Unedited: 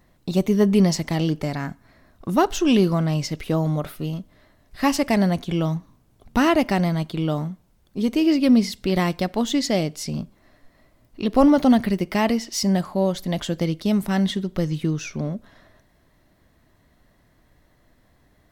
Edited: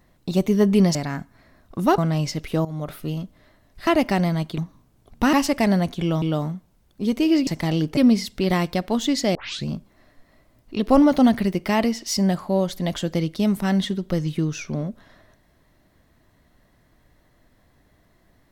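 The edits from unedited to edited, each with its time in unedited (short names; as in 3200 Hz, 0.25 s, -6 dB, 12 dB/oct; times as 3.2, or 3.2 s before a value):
0.95–1.45 move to 8.43
2.48–2.94 cut
3.61–3.95 fade in, from -15.5 dB
4.83–5.72 swap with 6.47–7.18
9.81 tape start 0.31 s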